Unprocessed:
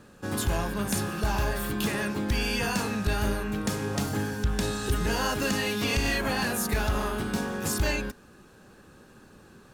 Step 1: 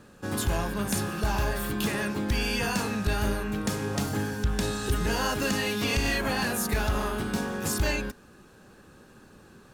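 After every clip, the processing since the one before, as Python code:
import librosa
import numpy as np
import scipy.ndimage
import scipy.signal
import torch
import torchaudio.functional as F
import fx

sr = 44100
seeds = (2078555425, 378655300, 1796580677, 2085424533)

y = x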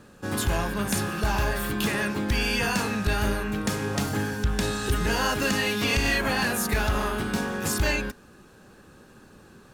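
y = fx.dynamic_eq(x, sr, hz=2000.0, q=0.78, threshold_db=-40.0, ratio=4.0, max_db=3)
y = F.gain(torch.from_numpy(y), 1.5).numpy()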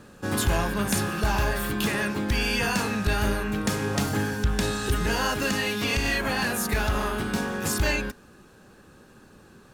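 y = fx.rider(x, sr, range_db=3, speed_s=2.0)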